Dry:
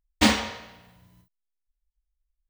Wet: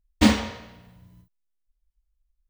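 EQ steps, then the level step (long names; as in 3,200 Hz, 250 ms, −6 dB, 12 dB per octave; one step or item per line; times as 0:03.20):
low-shelf EQ 440 Hz +9.5 dB
notch filter 780 Hz, Q 25
−3.0 dB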